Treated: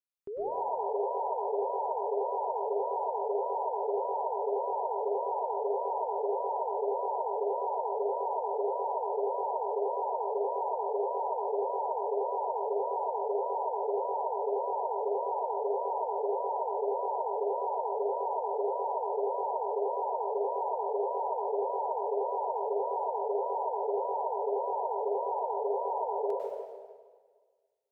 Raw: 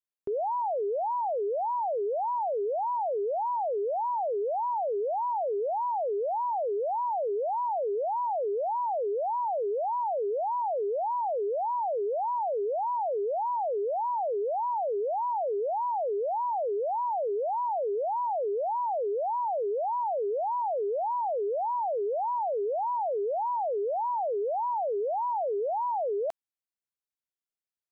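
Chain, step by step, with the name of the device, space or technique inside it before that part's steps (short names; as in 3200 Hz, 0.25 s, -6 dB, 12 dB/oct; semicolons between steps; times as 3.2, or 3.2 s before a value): stairwell (reverb RT60 1.6 s, pre-delay 94 ms, DRR -5 dB); gain -9 dB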